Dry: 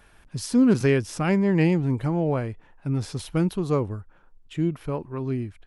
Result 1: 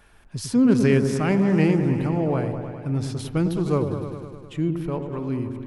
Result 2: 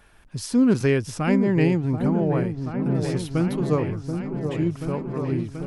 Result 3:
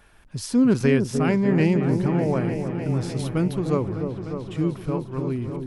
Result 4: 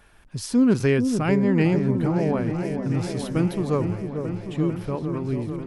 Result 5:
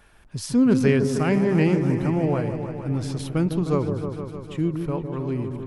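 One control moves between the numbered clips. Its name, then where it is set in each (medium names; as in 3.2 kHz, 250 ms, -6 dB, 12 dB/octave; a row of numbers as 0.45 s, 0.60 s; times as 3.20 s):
delay with an opening low-pass, time: 102 ms, 732 ms, 301 ms, 445 ms, 154 ms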